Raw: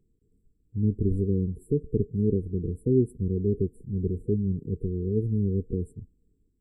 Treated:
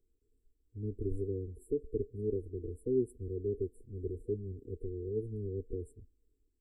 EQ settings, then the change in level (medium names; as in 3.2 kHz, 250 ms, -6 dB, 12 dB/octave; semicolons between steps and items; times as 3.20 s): peaking EQ 140 Hz -5 dB 2.9 oct; static phaser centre 410 Hz, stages 4; -3.5 dB